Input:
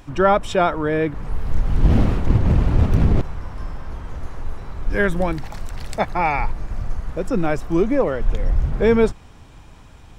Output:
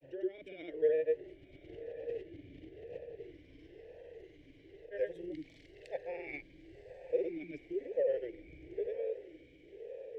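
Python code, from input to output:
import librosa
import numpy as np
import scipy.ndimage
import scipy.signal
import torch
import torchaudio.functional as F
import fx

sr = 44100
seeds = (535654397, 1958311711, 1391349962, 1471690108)

p1 = fx.over_compress(x, sr, threshold_db=-20.0, ratio=-1.0)
p2 = fx.fixed_phaser(p1, sr, hz=540.0, stages=4)
p3 = fx.granulator(p2, sr, seeds[0], grain_ms=100.0, per_s=20.0, spray_ms=100.0, spread_st=0)
p4 = p3 + fx.echo_diffused(p3, sr, ms=1089, feedback_pct=56, wet_db=-12, dry=0)
p5 = fx.vowel_sweep(p4, sr, vowels='e-i', hz=1.0)
y = p5 * librosa.db_to_amplitude(-3.0)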